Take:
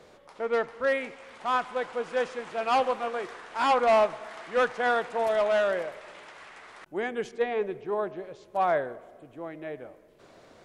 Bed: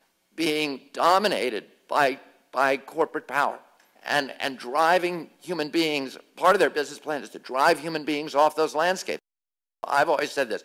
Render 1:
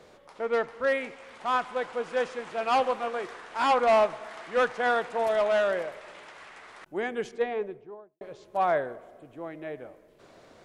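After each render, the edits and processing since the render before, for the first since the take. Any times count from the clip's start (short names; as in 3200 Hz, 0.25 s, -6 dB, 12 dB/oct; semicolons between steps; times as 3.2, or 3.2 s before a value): 7.29–8.21 studio fade out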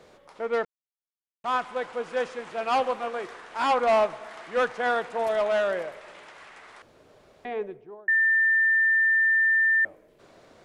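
0.65–1.44 mute; 6.82–7.45 room tone; 8.08–9.85 bleep 1790 Hz -18 dBFS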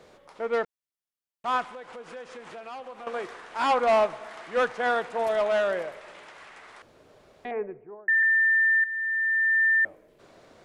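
1.65–3.07 compressor 5:1, threshold -39 dBFS; 7.51–8.23 steep low-pass 2400 Hz 48 dB/oct; 8.84–9.64 fade in, from -13 dB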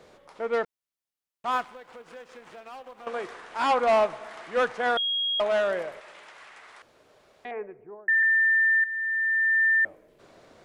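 1.51–3.06 G.711 law mismatch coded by A; 4.97–5.4 bleep 3280 Hz -24 dBFS; 6–7.79 low shelf 450 Hz -8.5 dB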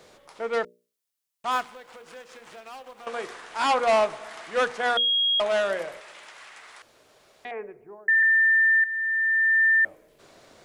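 high shelf 3300 Hz +9 dB; notches 60/120/180/240/300/360/420/480/540/600 Hz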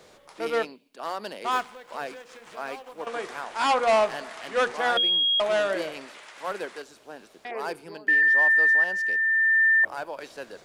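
add bed -13.5 dB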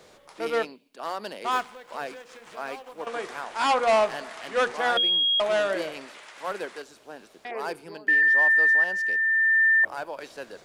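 nothing audible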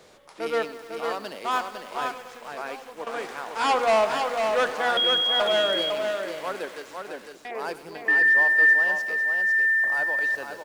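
on a send: echo 0.503 s -5 dB; on the sum: lo-fi delay 99 ms, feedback 80%, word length 7-bit, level -15 dB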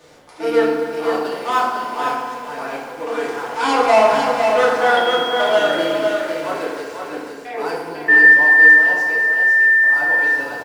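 echo 0.252 s -13.5 dB; FDN reverb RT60 1.1 s, low-frequency decay 1.2×, high-frequency decay 0.55×, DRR -6 dB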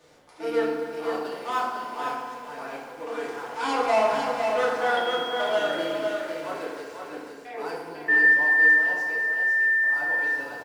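gain -9 dB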